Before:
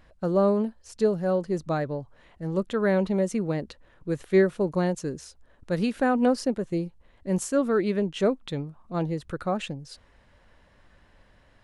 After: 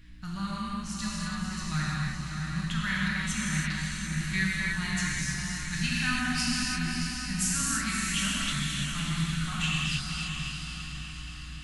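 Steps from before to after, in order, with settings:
Chebyshev band-stop filter 100–2,200 Hz, order 2
mains-hum notches 60/120/180 Hz
mains hum 60 Hz, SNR 17 dB
feedback delay with all-pass diffusion 568 ms, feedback 54%, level −5 dB
reverb whose tail is shaped and stops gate 360 ms flat, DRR −6 dB
level +3.5 dB

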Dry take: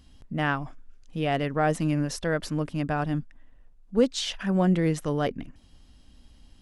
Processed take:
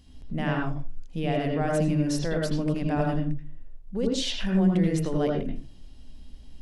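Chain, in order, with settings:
parametric band 1,300 Hz −6.5 dB 0.67 octaves
brickwall limiter −20.5 dBFS, peak gain reduction 10 dB
convolution reverb RT60 0.35 s, pre-delay 79 ms, DRR 0 dB

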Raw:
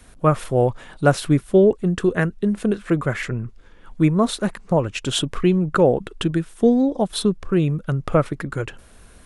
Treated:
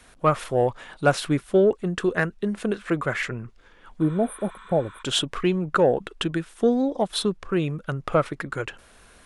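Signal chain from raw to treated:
mid-hump overdrive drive 9 dB, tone 5,500 Hz, clips at −2.5 dBFS
healed spectral selection 0:04.05–0:05.00, 870–8,800 Hz before
level −3.5 dB

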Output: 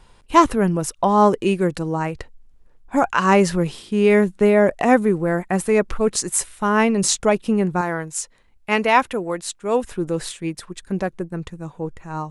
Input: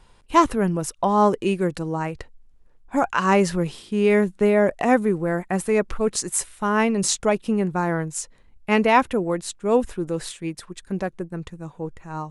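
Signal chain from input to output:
0:07.81–0:09.92: low-shelf EQ 440 Hz −8.5 dB
level +3 dB

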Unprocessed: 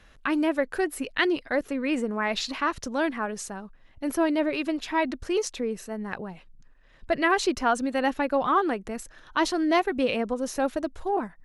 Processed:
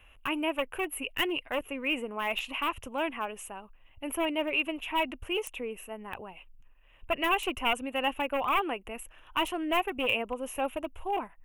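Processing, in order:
wavefolder on the positive side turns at −20 dBFS
drawn EQ curve 110 Hz 0 dB, 160 Hz −15 dB, 250 Hz −7 dB, 470 Hz −4 dB, 710 Hz −1 dB, 1,000 Hz +2 dB, 1,700 Hz −7 dB, 2,800 Hz +11 dB, 4,400 Hz −25 dB, 13,000 Hz +10 dB
level −2.5 dB

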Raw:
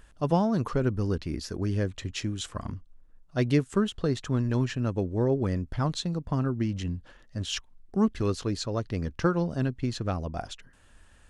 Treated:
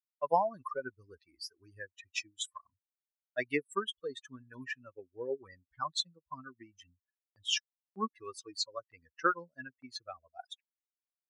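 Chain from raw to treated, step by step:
spectral dynamics exaggerated over time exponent 3
noise gate with hold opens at −52 dBFS
high-pass filter 750 Hz 12 dB per octave
high-shelf EQ 7,100 Hz −7.5 dB
level +7.5 dB

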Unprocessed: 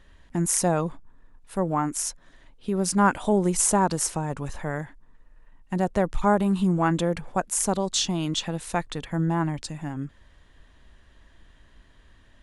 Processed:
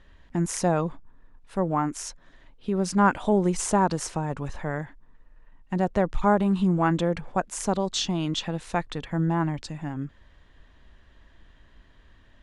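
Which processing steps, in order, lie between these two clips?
Bessel low-pass filter 4,900 Hz, order 2

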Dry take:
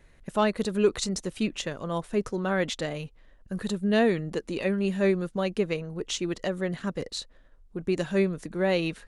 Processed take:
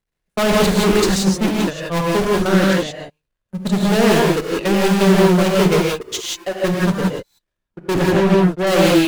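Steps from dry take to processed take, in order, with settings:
converter with a step at zero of −28.5 dBFS
0:06.01–0:06.64: high-pass filter 370 Hz 12 dB per octave
noise gate −25 dBFS, range −33 dB
0:02.42–0:02.99: output level in coarse steps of 14 dB
0:07.94–0:08.67: low-pass filter 1,800 Hz 6 dB per octave
leveller curve on the samples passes 5
reverb whose tail is shaped and stops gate 200 ms rising, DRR −2.5 dB
highs frequency-modulated by the lows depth 0.2 ms
level −5 dB

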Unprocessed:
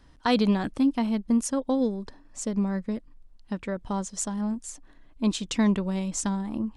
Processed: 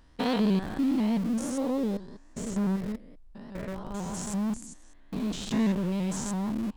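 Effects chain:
spectrum averaged block by block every 200 ms
parametric band 120 Hz −3 dB 1.5 octaves
in parallel at −10.5 dB: comparator with hysteresis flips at −33 dBFS
on the sum: pitch modulation by a square or saw wave saw up 6 Hz, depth 100 cents

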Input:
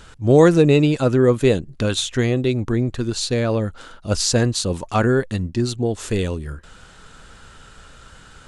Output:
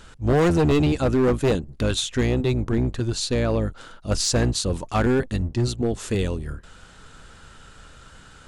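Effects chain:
sub-octave generator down 1 octave, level −4 dB
gain into a clipping stage and back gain 12.5 dB
level −2.5 dB

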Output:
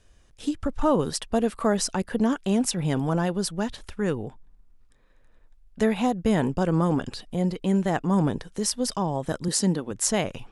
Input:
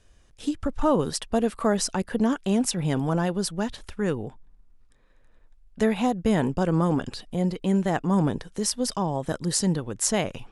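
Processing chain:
0:09.48–0:09.91: low shelf with overshoot 140 Hz −12 dB, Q 1.5

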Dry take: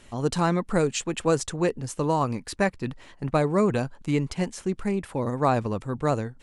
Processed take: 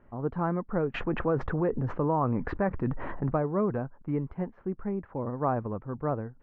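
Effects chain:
low-pass filter 1,500 Hz 24 dB per octave
0:00.94–0:03.36: envelope flattener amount 70%
level −5.5 dB

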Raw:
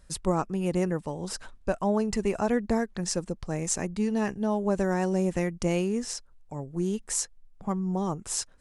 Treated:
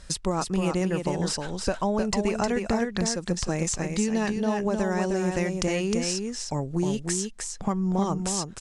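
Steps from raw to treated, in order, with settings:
high-shelf EQ 2,500 Hz +12 dB
downward compressor 5 to 1, threshold −32 dBFS, peak gain reduction 16.5 dB
high-frequency loss of the air 72 metres
on a send: single-tap delay 310 ms −5 dB
on the sum: level +9 dB

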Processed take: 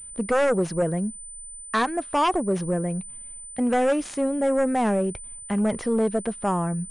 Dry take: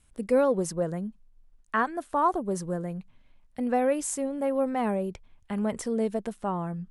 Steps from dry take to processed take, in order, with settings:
sine wavefolder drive 7 dB, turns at −13 dBFS
switching amplifier with a slow clock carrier 9,000 Hz
level −4 dB

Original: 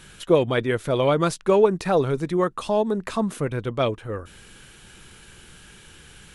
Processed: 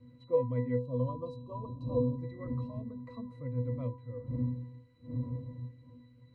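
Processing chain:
wind on the microphone 210 Hz −27 dBFS
resonances in every octave B, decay 0.34 s
time-frequency box erased 0:00.78–0:02.19, 1,200–2,600 Hz

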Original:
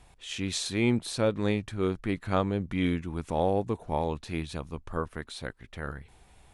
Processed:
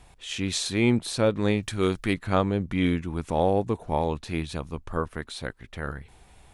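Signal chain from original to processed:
0:01.62–0:02.14: high-shelf EQ 2,400 Hz +11 dB
level +3.5 dB

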